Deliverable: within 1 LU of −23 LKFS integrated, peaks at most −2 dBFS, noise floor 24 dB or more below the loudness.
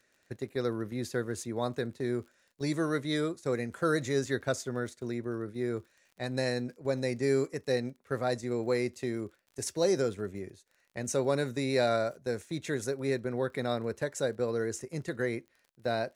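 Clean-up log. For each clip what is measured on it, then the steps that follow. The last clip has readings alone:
crackle rate 37 per second; integrated loudness −32.5 LKFS; sample peak −16.0 dBFS; target loudness −23.0 LKFS
→ click removal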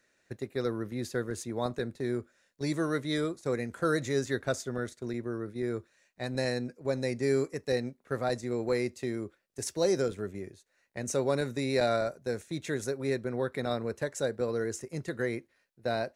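crackle rate 0.062 per second; integrated loudness −32.5 LKFS; sample peak −15.0 dBFS; target loudness −23.0 LKFS
→ level +9.5 dB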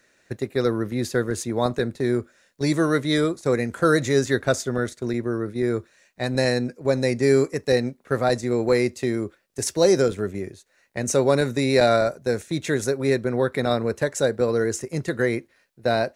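integrated loudness −23.0 LKFS; sample peak −5.5 dBFS; background noise floor −63 dBFS

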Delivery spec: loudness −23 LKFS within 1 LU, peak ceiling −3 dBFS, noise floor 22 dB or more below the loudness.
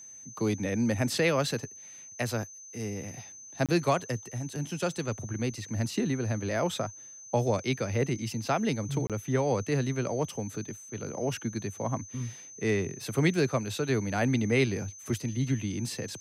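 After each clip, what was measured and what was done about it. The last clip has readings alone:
number of dropouts 2; longest dropout 27 ms; interfering tone 6,200 Hz; level of the tone −45 dBFS; integrated loudness −30.5 LKFS; sample peak −12.0 dBFS; target loudness −23.0 LKFS
→ repair the gap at 0:03.66/0:09.07, 27 ms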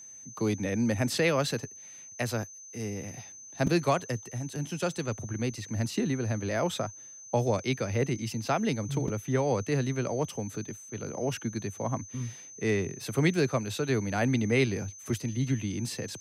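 number of dropouts 0; interfering tone 6,200 Hz; level of the tone −45 dBFS
→ notch filter 6,200 Hz, Q 30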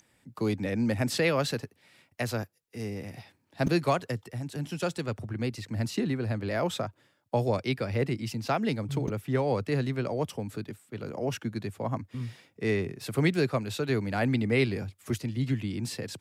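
interfering tone none found; integrated loudness −30.5 LKFS; sample peak −12.5 dBFS; target loudness −23.0 LKFS
→ level +7.5 dB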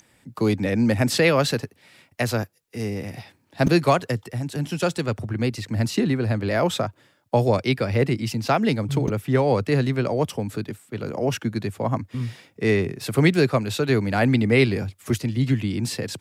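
integrated loudness −23.0 LKFS; sample peak −5.0 dBFS; background noise floor −62 dBFS

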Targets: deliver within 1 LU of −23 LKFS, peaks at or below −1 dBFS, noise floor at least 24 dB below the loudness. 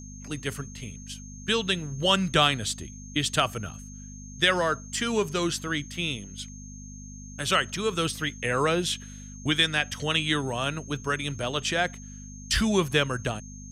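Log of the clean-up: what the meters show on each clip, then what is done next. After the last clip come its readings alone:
mains hum 50 Hz; hum harmonics up to 250 Hz; level of the hum −41 dBFS; interfering tone 6,400 Hz; level of the tone −46 dBFS; integrated loudness −26.5 LKFS; sample peak −7.5 dBFS; target loudness −23.0 LKFS
→ hum removal 50 Hz, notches 5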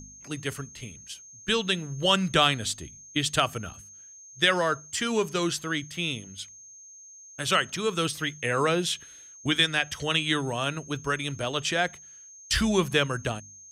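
mains hum none found; interfering tone 6,400 Hz; level of the tone −46 dBFS
→ notch filter 6,400 Hz, Q 30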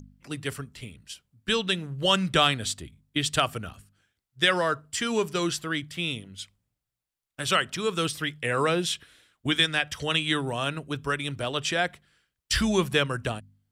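interfering tone none found; integrated loudness −26.5 LKFS; sample peak −8.0 dBFS; target loudness −23.0 LKFS
→ level +3.5 dB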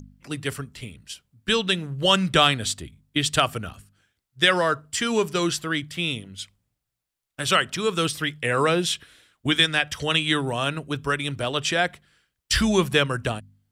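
integrated loudness −23.0 LKFS; sample peak −4.5 dBFS; background noise floor −83 dBFS

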